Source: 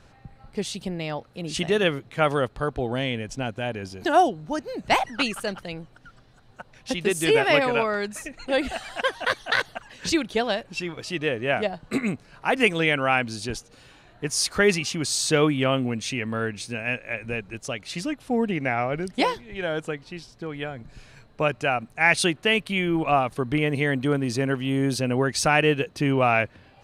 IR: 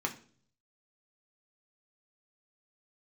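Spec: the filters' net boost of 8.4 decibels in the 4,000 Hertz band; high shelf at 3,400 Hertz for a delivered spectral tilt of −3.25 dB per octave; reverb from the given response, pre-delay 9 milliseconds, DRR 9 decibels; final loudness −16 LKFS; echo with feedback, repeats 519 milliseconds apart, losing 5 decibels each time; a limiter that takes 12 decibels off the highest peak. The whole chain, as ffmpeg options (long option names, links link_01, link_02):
-filter_complex "[0:a]highshelf=frequency=3400:gain=6,equalizer=frequency=4000:width_type=o:gain=7,alimiter=limit=-11.5dB:level=0:latency=1,aecho=1:1:519|1038|1557|2076|2595|3114|3633:0.562|0.315|0.176|0.0988|0.0553|0.031|0.0173,asplit=2[link_01][link_02];[1:a]atrim=start_sample=2205,adelay=9[link_03];[link_02][link_03]afir=irnorm=-1:irlink=0,volume=-14dB[link_04];[link_01][link_04]amix=inputs=2:normalize=0,volume=6.5dB"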